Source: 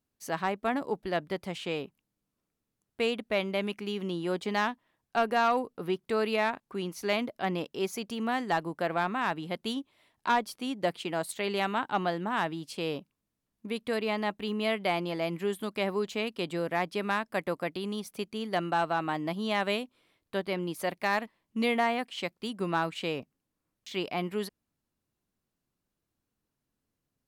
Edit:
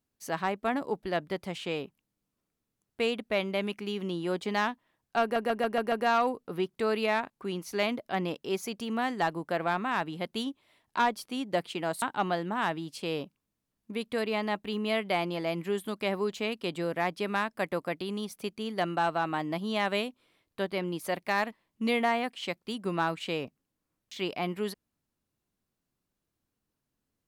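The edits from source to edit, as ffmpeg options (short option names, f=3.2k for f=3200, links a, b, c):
-filter_complex "[0:a]asplit=7[a][b][c][d][e][f][g];[a]atrim=end=5.362[h];[b]atrim=start=5.218:end=5.362[i];[c]atrim=start=5.218:end=5.362[j];[d]atrim=start=5.218:end=5.362[k];[e]atrim=start=5.218:end=5.362[l];[f]atrim=start=5.218:end=11.322[m];[g]atrim=start=11.768[n];[h][i]acrossfade=d=0.004:c1=hsin:c2=hsin[o];[o][j]acrossfade=d=0.004:c1=hsin:c2=hsin[p];[p][k]acrossfade=d=0.004:c1=hsin:c2=hsin[q];[q][l]acrossfade=d=0.004:c1=hsin:c2=hsin[r];[r][m]acrossfade=d=0.004:c1=hsin:c2=hsin[s];[s][n]acrossfade=d=0.004:c1=hsin:c2=hsin"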